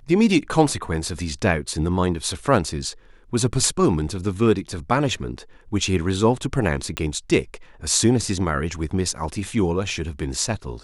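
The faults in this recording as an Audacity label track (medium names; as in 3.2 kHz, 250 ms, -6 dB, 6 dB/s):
6.970000	6.970000	pop -10 dBFS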